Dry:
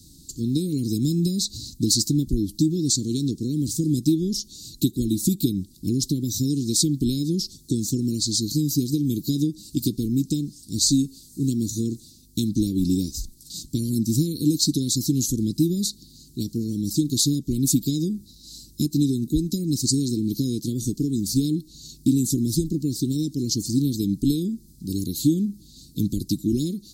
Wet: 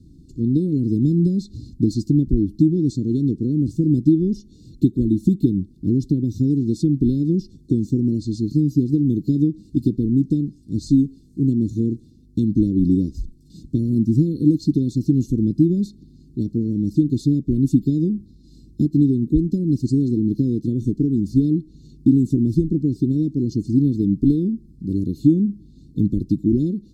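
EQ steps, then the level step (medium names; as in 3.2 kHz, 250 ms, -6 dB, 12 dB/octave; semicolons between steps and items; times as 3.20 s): Savitzky-Golay filter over 65 samples; +5.0 dB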